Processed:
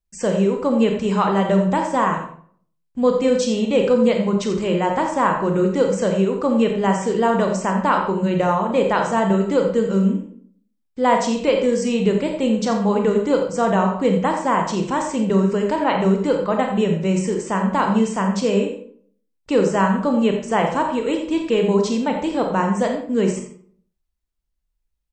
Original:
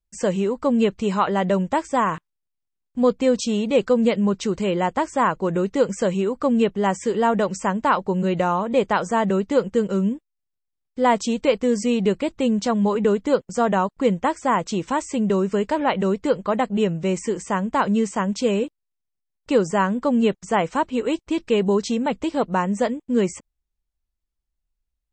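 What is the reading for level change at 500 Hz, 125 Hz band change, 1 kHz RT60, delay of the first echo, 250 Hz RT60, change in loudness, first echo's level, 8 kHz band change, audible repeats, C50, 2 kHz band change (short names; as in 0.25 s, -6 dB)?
+2.5 dB, +4.0 dB, 0.50 s, 86 ms, 0.65 s, +2.5 dB, -10.0 dB, +1.5 dB, 1, 5.0 dB, +2.0 dB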